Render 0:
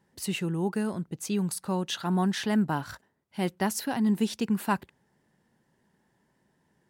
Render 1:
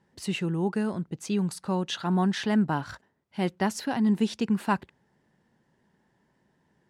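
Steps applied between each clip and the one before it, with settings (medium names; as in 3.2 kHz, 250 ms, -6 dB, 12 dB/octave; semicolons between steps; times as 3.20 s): distance through air 55 m; trim +1.5 dB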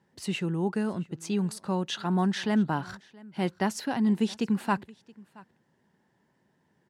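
high-pass 78 Hz; delay 674 ms -23.5 dB; trim -1 dB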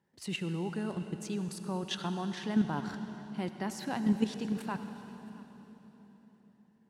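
level held to a coarse grid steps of 11 dB; on a send at -8.5 dB: reverberation RT60 4.1 s, pre-delay 60 ms; on the sum: trim -1 dB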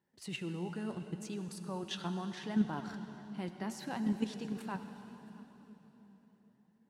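flange 0.72 Hz, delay 2.6 ms, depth 9.3 ms, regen +61%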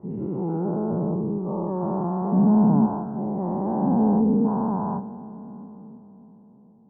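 every event in the spectrogram widened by 480 ms; steep low-pass 980 Hz 36 dB/octave; trim +8 dB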